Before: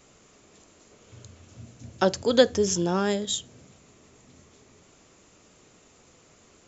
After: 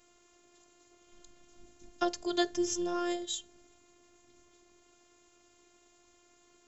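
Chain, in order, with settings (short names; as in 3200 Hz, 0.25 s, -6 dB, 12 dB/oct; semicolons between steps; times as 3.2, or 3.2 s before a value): robotiser 351 Hz; gain -5.5 dB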